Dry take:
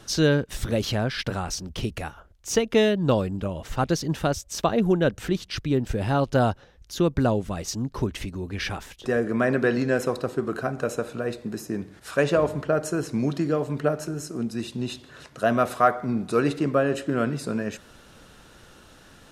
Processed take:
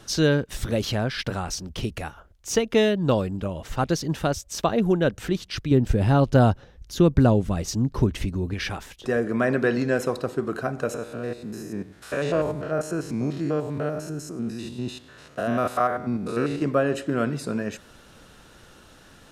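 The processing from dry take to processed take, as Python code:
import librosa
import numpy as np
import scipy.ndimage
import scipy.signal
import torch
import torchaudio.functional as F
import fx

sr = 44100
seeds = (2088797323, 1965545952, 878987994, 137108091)

y = fx.low_shelf(x, sr, hz=330.0, db=7.5, at=(5.71, 8.54))
y = fx.spec_steps(y, sr, hold_ms=100, at=(10.94, 16.62))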